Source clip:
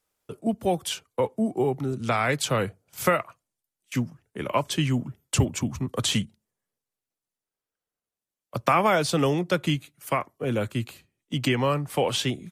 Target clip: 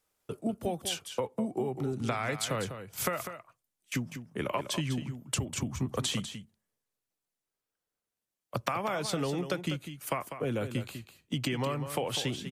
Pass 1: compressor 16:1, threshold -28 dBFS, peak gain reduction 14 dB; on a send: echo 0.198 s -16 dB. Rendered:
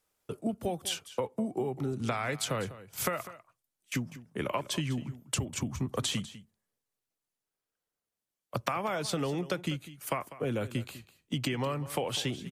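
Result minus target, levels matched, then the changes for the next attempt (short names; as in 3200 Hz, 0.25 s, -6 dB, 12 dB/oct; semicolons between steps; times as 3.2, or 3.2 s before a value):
echo-to-direct -6 dB
change: echo 0.198 s -10 dB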